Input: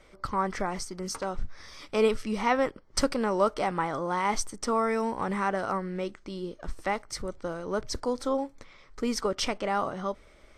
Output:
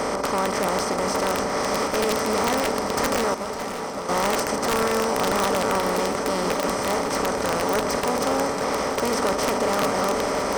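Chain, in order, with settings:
compressor on every frequency bin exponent 0.2
hard clipping −15.5 dBFS, distortion −10 dB
high-pass filter 70 Hz 12 dB per octave
parametric band 3,500 Hz −5 dB 1.3 octaves
on a send: feedback delay with all-pass diffusion 559 ms, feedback 60%, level −12 dB
0:03.34–0:04.09: on the sum: downward expander −12 dBFS
wrap-around overflow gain 12.5 dB
feedback echo with a swinging delay time 558 ms, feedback 80%, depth 72 cents, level −12.5 dB
level −2.5 dB

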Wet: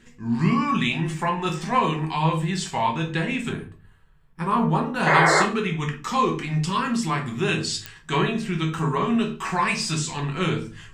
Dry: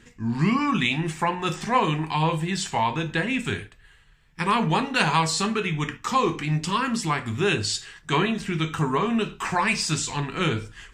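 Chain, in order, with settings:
0:03.49–0:05.03: flat-topped bell 3,900 Hz −10.5 dB 2.5 octaves
0:05.06–0:05.43: sound drawn into the spectrogram noise 300–2,200 Hz −17 dBFS
rectangular room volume 200 cubic metres, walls furnished, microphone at 1.1 metres
digital clicks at 0:07.86, −12 dBFS
level −2.5 dB

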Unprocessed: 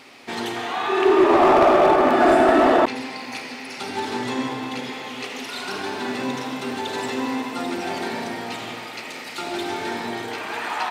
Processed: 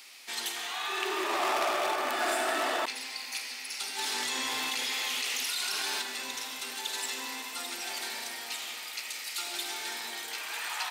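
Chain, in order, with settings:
first difference
0:03.99–0:06.02: envelope flattener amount 100%
level +4.5 dB

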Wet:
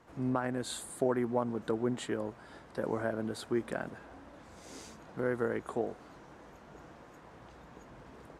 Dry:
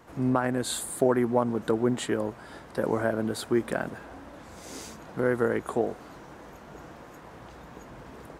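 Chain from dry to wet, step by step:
Bessel low-pass filter 9,300 Hz, order 2
level −7 dB

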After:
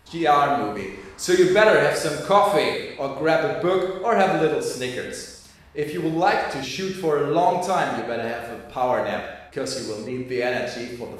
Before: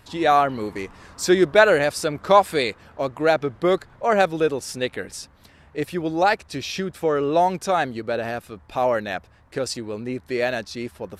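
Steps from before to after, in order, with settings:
reverb whose tail is shaped and stops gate 370 ms falling, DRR −0.5 dB
level −3 dB

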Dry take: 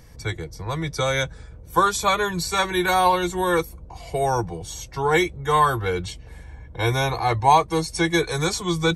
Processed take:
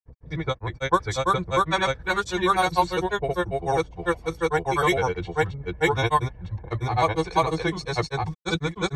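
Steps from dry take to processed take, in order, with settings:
low-pass that shuts in the quiet parts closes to 980 Hz, open at −14 dBFS
granular cloud 100 ms, grains 20 per second, spray 997 ms, pitch spread up and down by 0 semitones

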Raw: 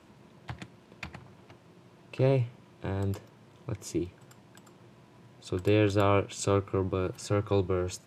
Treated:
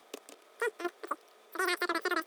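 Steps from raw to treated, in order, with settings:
change of speed 3.56×
output level in coarse steps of 10 dB

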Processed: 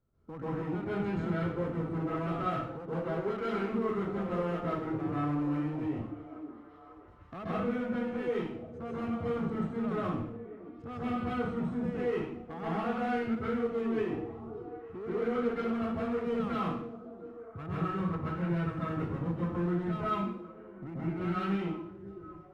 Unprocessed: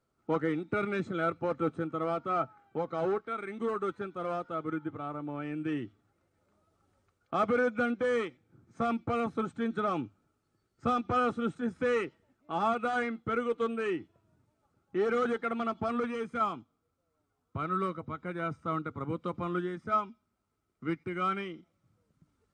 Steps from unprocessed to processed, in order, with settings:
RIAA equalisation playback
output level in coarse steps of 20 dB
hard clipping −37.5 dBFS, distortion −15 dB
on a send: echo through a band-pass that steps 544 ms, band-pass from 330 Hz, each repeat 0.7 octaves, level −12 dB
on the sum: harmonic generator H 5 −25 dB, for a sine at −34.5 dBFS
dense smooth reverb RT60 0.65 s, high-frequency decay 0.95×, pre-delay 120 ms, DRR −9 dB

